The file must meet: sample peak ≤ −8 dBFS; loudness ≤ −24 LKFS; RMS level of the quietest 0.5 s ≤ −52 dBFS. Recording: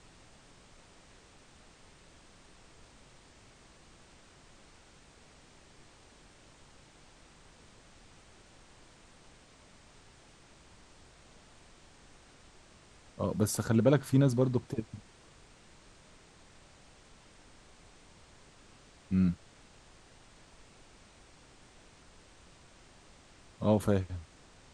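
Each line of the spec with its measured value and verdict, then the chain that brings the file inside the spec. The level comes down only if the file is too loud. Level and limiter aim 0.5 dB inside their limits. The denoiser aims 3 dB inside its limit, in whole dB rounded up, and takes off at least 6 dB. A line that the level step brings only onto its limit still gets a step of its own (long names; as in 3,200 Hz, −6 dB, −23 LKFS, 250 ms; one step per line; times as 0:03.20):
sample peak −11.5 dBFS: in spec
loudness −30.0 LKFS: in spec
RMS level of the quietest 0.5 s −58 dBFS: in spec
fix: no processing needed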